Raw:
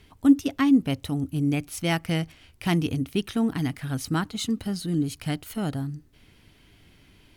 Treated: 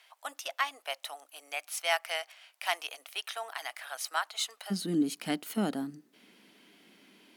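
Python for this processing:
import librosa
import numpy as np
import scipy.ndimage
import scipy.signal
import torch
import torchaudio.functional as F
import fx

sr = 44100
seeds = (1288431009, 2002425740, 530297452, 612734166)

y = fx.ellip_highpass(x, sr, hz=fx.steps((0.0, 630.0), (4.7, 200.0)), order=4, stop_db=70)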